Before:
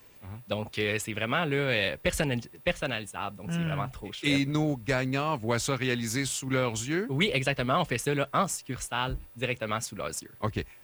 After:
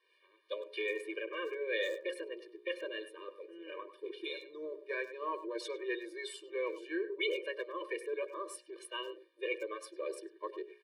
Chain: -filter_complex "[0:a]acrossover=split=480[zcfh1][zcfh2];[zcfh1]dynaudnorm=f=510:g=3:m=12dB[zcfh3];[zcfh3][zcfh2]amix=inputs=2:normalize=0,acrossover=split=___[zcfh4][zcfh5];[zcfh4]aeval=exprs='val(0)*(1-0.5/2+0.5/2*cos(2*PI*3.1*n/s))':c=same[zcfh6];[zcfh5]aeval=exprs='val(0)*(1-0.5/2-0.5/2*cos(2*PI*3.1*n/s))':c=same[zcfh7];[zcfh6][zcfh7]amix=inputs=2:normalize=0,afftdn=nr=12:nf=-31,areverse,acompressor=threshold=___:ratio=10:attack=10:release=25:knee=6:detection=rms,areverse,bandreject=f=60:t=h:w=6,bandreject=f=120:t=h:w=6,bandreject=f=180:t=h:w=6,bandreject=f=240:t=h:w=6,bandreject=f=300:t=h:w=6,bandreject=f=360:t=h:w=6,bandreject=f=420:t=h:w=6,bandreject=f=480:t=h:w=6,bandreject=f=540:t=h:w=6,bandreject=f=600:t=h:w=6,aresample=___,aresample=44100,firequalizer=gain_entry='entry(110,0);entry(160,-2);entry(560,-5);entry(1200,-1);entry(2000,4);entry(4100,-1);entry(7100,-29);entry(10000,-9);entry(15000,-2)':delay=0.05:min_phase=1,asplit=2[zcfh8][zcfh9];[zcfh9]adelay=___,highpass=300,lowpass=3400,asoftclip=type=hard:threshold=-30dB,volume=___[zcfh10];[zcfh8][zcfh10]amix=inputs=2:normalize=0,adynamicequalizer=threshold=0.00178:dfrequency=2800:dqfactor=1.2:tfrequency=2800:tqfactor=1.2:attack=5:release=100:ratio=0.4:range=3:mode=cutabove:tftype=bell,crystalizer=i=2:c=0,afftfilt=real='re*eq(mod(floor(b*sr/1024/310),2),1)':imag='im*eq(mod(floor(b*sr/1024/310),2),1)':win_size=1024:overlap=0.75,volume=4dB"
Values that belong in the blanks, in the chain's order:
450, -31dB, 22050, 100, -12dB